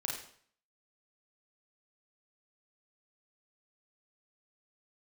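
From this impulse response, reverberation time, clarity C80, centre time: 0.55 s, 7.0 dB, 42 ms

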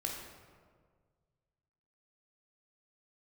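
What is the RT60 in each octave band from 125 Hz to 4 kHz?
2.4 s, 1.8 s, 1.9 s, 1.6 s, 1.3 s, 0.95 s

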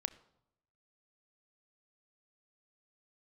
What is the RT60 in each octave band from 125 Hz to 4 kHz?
1.1 s, 0.90 s, 0.85 s, 0.80 s, 0.55 s, 0.55 s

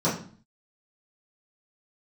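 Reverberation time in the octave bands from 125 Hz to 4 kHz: 0.60 s, 0.60 s, 0.45 s, 0.45 s, 0.40 s, 0.40 s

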